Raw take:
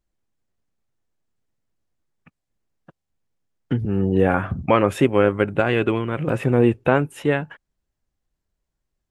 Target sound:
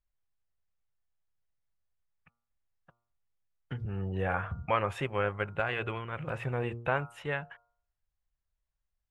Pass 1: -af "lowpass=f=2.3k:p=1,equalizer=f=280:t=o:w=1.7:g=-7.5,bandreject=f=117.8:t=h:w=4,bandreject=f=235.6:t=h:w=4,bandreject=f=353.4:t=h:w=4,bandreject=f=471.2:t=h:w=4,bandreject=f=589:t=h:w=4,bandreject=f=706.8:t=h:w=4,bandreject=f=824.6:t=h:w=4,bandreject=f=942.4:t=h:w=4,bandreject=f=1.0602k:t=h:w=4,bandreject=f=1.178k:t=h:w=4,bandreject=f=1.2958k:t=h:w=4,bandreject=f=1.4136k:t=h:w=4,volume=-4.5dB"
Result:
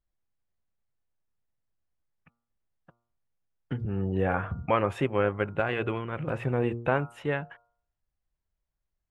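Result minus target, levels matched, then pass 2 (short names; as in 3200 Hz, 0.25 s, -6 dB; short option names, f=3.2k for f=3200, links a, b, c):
250 Hz band +4.0 dB
-af "lowpass=f=2.3k:p=1,equalizer=f=280:t=o:w=1.7:g=-18.5,bandreject=f=117.8:t=h:w=4,bandreject=f=235.6:t=h:w=4,bandreject=f=353.4:t=h:w=4,bandreject=f=471.2:t=h:w=4,bandreject=f=589:t=h:w=4,bandreject=f=706.8:t=h:w=4,bandreject=f=824.6:t=h:w=4,bandreject=f=942.4:t=h:w=4,bandreject=f=1.0602k:t=h:w=4,bandreject=f=1.178k:t=h:w=4,bandreject=f=1.2958k:t=h:w=4,bandreject=f=1.4136k:t=h:w=4,volume=-4.5dB"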